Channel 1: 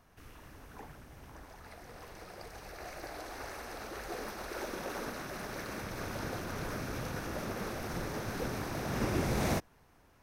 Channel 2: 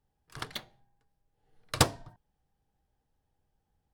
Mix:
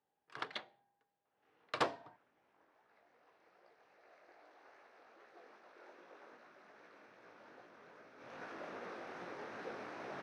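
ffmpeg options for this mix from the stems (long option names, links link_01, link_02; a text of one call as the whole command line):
ffmpeg -i stem1.wav -i stem2.wav -filter_complex "[0:a]flanger=delay=16.5:depth=7.9:speed=2.5,adelay=1250,volume=-3.5dB,afade=type=in:start_time=8.16:duration=0.27:silence=0.266073[link_01];[1:a]volume=-0.5dB[link_02];[link_01][link_02]amix=inputs=2:normalize=0,asoftclip=type=tanh:threshold=-22dB,highpass=360,lowpass=3000" out.wav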